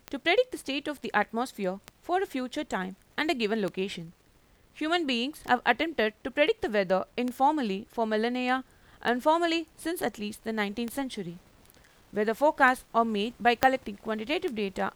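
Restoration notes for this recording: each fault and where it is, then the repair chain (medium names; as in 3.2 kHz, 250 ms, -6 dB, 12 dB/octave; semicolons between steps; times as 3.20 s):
tick 33 1/3 rpm -19 dBFS
13.63 s: pop -6 dBFS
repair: de-click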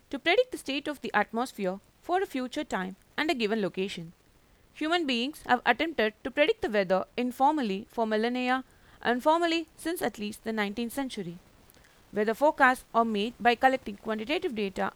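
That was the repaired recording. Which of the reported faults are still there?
13.63 s: pop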